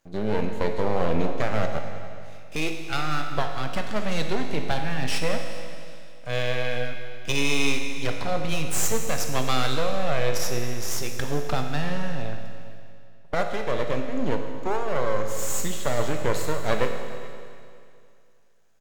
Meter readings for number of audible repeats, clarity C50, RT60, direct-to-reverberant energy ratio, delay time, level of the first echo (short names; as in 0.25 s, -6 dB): 1, 5.5 dB, 2.4 s, 4.0 dB, 0.421 s, -21.0 dB